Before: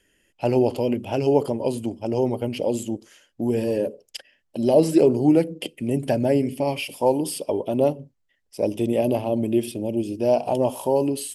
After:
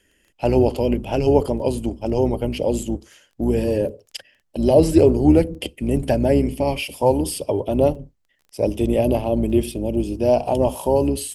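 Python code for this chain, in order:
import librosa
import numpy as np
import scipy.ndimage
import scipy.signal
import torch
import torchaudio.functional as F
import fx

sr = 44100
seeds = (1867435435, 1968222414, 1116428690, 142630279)

y = fx.octave_divider(x, sr, octaves=2, level_db=-4.0)
y = fx.dmg_crackle(y, sr, seeds[0], per_s=11.0, level_db=-40.0)
y = y * librosa.db_to_amplitude(2.5)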